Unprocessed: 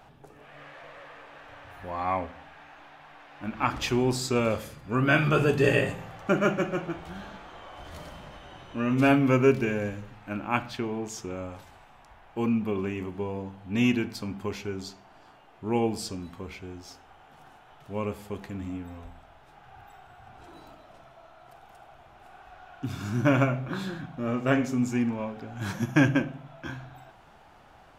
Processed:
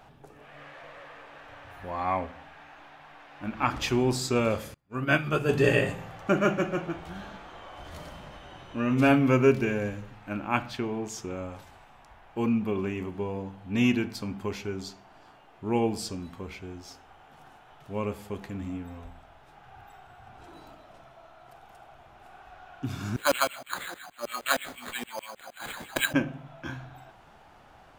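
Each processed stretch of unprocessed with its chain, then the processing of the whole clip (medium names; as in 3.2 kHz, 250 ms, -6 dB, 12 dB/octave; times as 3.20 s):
4.74–5.49 s: treble shelf 11 kHz +7.5 dB + upward expansion 2.5:1, over -38 dBFS
23.16–26.14 s: peaking EQ 430 Hz -12.5 dB 0.31 oct + LFO high-pass saw down 6.4 Hz 440–6200 Hz + careless resampling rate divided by 8×, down none, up hold
whole clip: none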